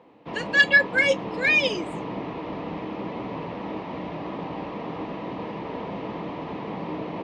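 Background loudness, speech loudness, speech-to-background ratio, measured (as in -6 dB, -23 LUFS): -33.5 LUFS, -20.0 LUFS, 13.5 dB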